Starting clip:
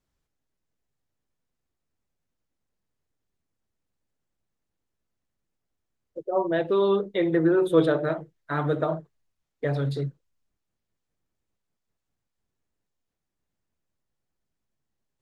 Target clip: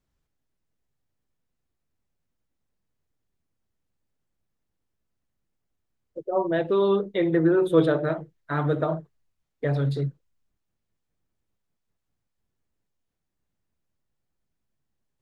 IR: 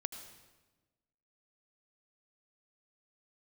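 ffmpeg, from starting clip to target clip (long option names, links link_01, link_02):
-af "bass=frequency=250:gain=3,treble=frequency=4000:gain=-2"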